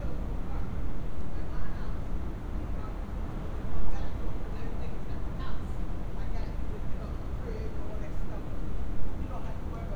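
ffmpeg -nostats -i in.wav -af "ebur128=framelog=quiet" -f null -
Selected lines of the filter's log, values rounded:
Integrated loudness:
  I:         -38.4 LUFS
  Threshold: -48.4 LUFS
Loudness range:
  LRA:         0.3 LU
  Threshold: -58.4 LUFS
  LRA low:   -38.5 LUFS
  LRA high:  -38.2 LUFS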